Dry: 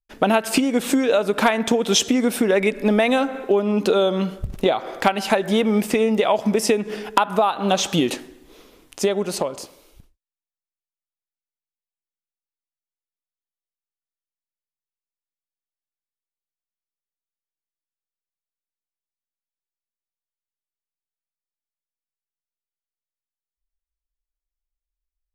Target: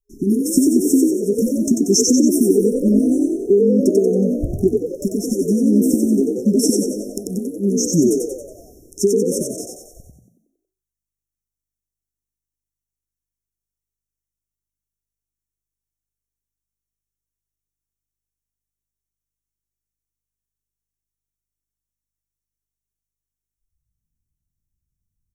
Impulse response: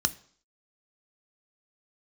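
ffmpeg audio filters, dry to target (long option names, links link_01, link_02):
-filter_complex "[0:a]afftfilt=real='re*(1-between(b*sr/4096,410,5300))':imag='im*(1-between(b*sr/4096,410,5300))':win_size=4096:overlap=0.75,asplit=2[link_01][link_02];[link_02]asplit=7[link_03][link_04][link_05][link_06][link_07][link_08][link_09];[link_03]adelay=92,afreqshift=51,volume=-3dB[link_10];[link_04]adelay=184,afreqshift=102,volume=-9dB[link_11];[link_05]adelay=276,afreqshift=153,volume=-15dB[link_12];[link_06]adelay=368,afreqshift=204,volume=-21.1dB[link_13];[link_07]adelay=460,afreqshift=255,volume=-27.1dB[link_14];[link_08]adelay=552,afreqshift=306,volume=-33.1dB[link_15];[link_09]adelay=644,afreqshift=357,volume=-39.1dB[link_16];[link_10][link_11][link_12][link_13][link_14][link_15][link_16]amix=inputs=7:normalize=0[link_17];[link_01][link_17]amix=inputs=2:normalize=0,volume=4.5dB"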